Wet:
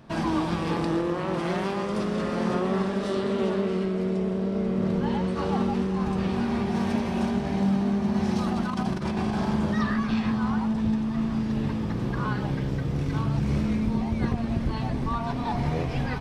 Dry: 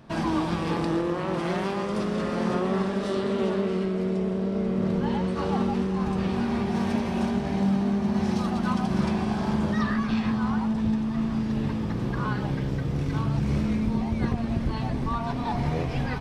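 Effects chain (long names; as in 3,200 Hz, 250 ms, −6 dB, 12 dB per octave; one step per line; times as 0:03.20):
0:08.38–0:09.45: compressor whose output falls as the input rises −26 dBFS, ratio −0.5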